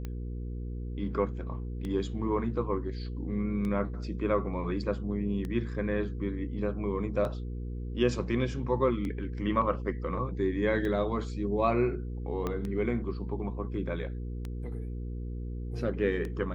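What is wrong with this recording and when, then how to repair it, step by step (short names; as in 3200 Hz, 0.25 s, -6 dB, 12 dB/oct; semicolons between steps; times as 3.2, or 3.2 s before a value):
hum 60 Hz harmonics 8 -36 dBFS
tick 33 1/3 rpm -24 dBFS
12.47 pop -19 dBFS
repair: de-click; de-hum 60 Hz, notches 8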